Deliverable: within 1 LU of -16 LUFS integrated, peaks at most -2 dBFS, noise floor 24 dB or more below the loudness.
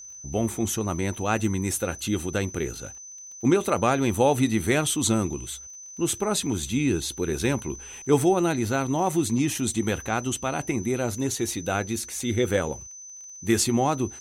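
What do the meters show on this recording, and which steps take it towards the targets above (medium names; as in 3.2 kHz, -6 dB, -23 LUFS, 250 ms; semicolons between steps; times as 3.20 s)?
tick rate 23 per s; steady tone 6.1 kHz; tone level -40 dBFS; loudness -25.5 LUFS; peak level -8.0 dBFS; loudness target -16.0 LUFS
-> de-click; band-stop 6.1 kHz, Q 30; trim +9.5 dB; peak limiter -2 dBFS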